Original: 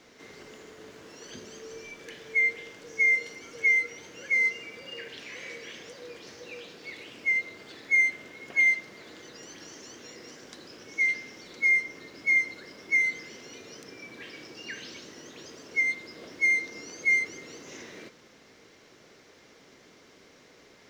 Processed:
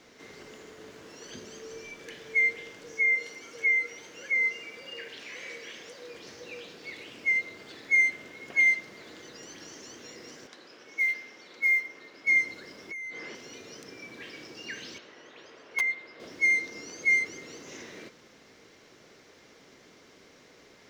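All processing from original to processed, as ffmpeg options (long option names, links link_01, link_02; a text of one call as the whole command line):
ffmpeg -i in.wav -filter_complex "[0:a]asettb=1/sr,asplit=3[link_01][link_02][link_03];[link_01]atrim=end=2.954[link_04];[link_02]atrim=start=2.95:end=6.14,asetpts=PTS-STARTPTS,afade=type=in:duration=0.004:curve=qsin,afade=type=out:start_time=3.186:duration=0.004:curve=qsin,lowshelf=frequency=190:gain=-9,acrossover=split=2600[link_05][link_06];[link_06]acompressor=threshold=-41dB:ratio=4:attack=1:release=60[link_07];[link_05][link_07]amix=inputs=2:normalize=0[link_08];[link_03]atrim=start=6.136[link_09];[link_04][link_08]acrossfade=duration=0.004:curve1=hsin:curve2=qsin[link_10];[link_10][link_09]acrossfade=duration=0.004:curve1=qsin:curve2=hsin,asettb=1/sr,asplit=3[link_11][link_12][link_13];[link_11]atrim=end=10.474[link_14];[link_12]atrim=start=10.47:end=12.27,asetpts=PTS-STARTPTS,afade=type=in:duration=0.004:curve=qsin,afade=type=out:start_time=1.796:duration=0.004:curve=qsin,highpass=frequency=600:poles=1,aemphasis=mode=reproduction:type=50fm,acrusher=bits=8:mode=log:mix=0:aa=0.000001[link_15];[link_13]atrim=start=12.266[link_16];[link_14][link_15]acrossfade=duration=0.004:curve1=hsin:curve2=qsin[link_17];[link_17][link_16]acrossfade=duration=0.004:curve1=qsin:curve2=hsin,asettb=1/sr,asplit=3[link_18][link_19][link_20];[link_18]atrim=end=12.914[link_21];[link_19]atrim=start=12.91:end=13.35,asetpts=PTS-STARTPTS,afade=type=in:duration=0.004:curve=qsin,afade=type=out:start_time=0.436:duration=0.004:curve=qsin,asplit=2[link_22][link_23];[link_23]highpass=frequency=720:poles=1,volume=16dB,asoftclip=type=tanh:threshold=-15.5dB[link_24];[link_22][link_24]amix=inputs=2:normalize=0,lowpass=frequency=1200:poles=1,volume=-6dB,acompressor=threshold=-36dB:ratio=12:attack=3.2:release=140:knee=1:detection=peak[link_25];[link_20]atrim=start=13.346[link_26];[link_21][link_25]acrossfade=duration=0.004:curve1=hsin:curve2=qsin[link_27];[link_27][link_26]acrossfade=duration=0.004:curve1=qsin:curve2=hsin,asettb=1/sr,asplit=3[link_28][link_29][link_30];[link_28]atrim=end=14.984[link_31];[link_29]atrim=start=14.98:end=16.2,asetpts=PTS-STARTPTS,afade=type=in:duration=0.004:curve=qsin,afade=type=out:start_time=1.216:duration=0.004:curve=qsin,aeval=exprs='(mod(8.41*val(0)+1,2)-1)/8.41':channel_layout=same,acrossover=split=440 3600:gain=0.251 1 0.141[link_32][link_33][link_34];[link_32][link_33][link_34]amix=inputs=3:normalize=0[link_35];[link_30]atrim=start=16.196[link_36];[link_31][link_35]acrossfade=duration=0.004:curve1=hsin:curve2=qsin[link_37];[link_37][link_36]acrossfade=duration=0.004:curve1=qsin:curve2=hsin" out.wav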